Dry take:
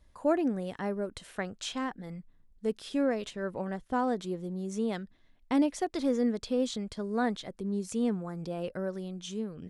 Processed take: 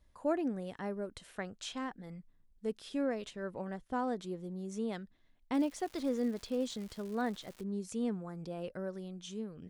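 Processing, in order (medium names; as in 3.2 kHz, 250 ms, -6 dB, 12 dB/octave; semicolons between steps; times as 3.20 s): 5.53–7.62 s: crackle 290 per s -38 dBFS; trim -5.5 dB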